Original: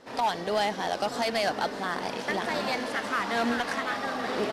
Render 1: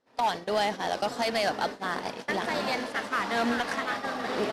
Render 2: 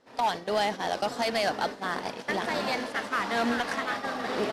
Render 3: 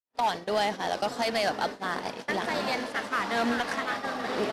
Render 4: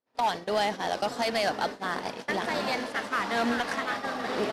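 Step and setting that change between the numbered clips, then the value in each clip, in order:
gate, range: -23 dB, -11 dB, -59 dB, -37 dB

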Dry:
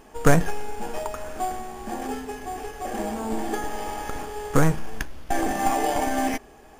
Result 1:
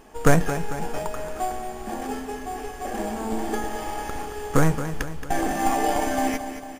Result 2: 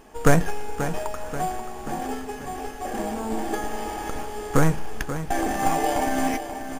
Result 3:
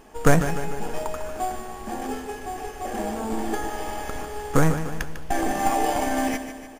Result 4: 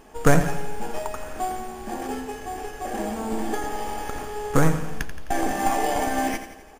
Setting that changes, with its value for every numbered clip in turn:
feedback delay, time: 224 ms, 534 ms, 149 ms, 86 ms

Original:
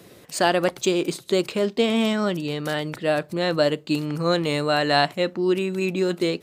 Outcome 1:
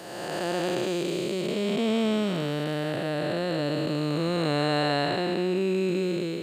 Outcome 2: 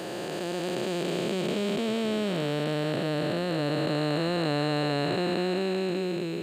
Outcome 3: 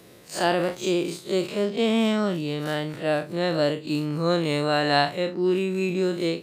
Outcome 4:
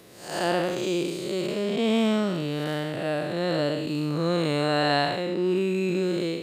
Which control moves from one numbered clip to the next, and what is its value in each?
spectral blur, width: 602 ms, 1560 ms, 86 ms, 236 ms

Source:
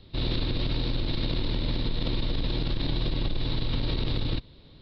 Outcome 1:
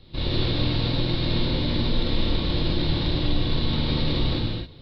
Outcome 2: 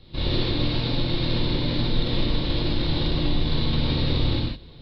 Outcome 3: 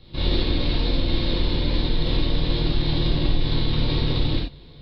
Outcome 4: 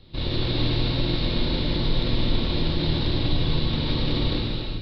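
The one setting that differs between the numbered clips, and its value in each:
gated-style reverb, gate: 290 ms, 190 ms, 110 ms, 470 ms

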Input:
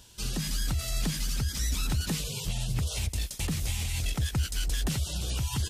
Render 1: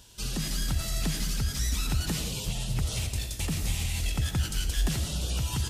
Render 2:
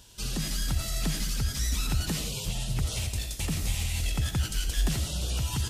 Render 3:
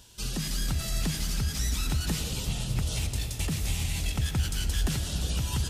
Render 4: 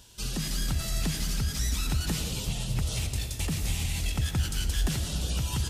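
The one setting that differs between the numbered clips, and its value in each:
algorithmic reverb, RT60: 0.95 s, 0.41 s, 5.1 s, 2.3 s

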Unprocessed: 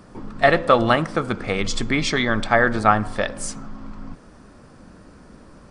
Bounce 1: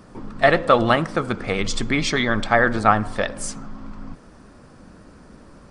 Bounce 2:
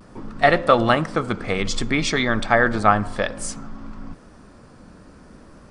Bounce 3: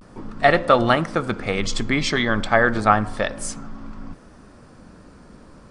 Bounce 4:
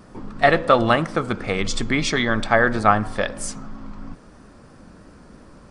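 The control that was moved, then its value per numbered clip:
vibrato, rate: 13 Hz, 0.58 Hz, 0.33 Hz, 3 Hz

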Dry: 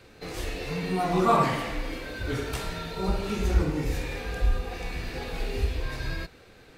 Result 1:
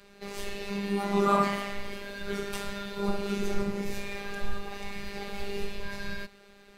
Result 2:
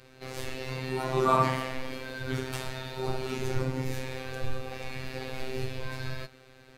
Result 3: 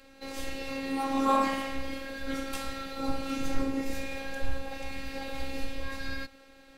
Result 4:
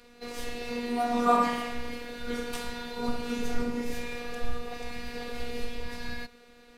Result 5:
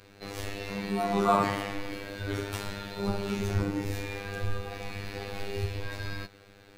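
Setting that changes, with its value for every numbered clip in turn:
robot voice, frequency: 200 Hz, 130 Hz, 270 Hz, 240 Hz, 100 Hz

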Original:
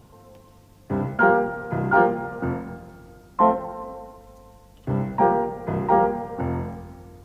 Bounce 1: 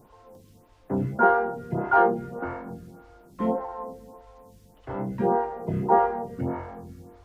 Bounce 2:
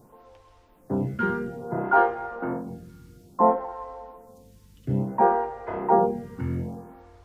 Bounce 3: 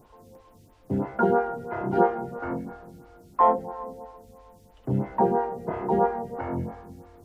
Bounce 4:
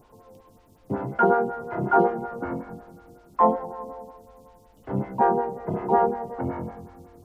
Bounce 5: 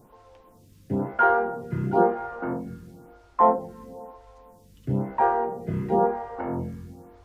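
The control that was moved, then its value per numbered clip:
lamp-driven phase shifter, rate: 1.7 Hz, 0.59 Hz, 3 Hz, 5.4 Hz, 1 Hz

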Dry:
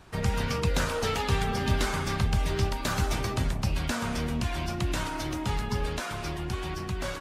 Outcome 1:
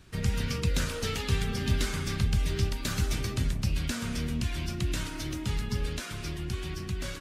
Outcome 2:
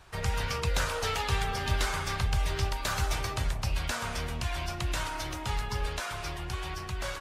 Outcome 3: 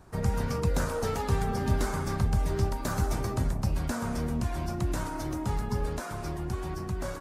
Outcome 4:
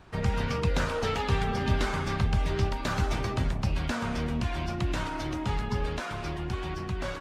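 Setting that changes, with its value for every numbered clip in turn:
peaking EQ, frequency: 820 Hz, 230 Hz, 3 kHz, 14 kHz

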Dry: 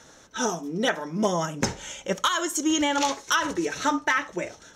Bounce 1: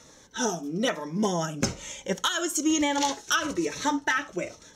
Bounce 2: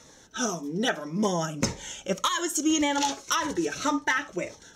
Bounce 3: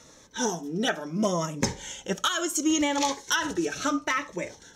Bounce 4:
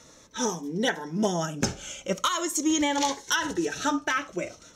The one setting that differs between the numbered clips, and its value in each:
Shepard-style phaser, rate: 1.1 Hz, 1.8 Hz, 0.72 Hz, 0.42 Hz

